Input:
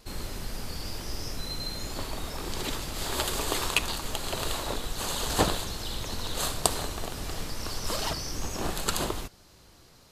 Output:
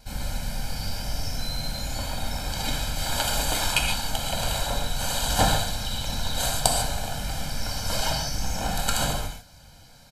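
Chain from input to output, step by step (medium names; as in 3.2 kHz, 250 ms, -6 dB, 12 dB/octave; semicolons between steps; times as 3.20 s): comb 1.3 ms, depth 96%; gated-style reverb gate 170 ms flat, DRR 0.5 dB; trim -1 dB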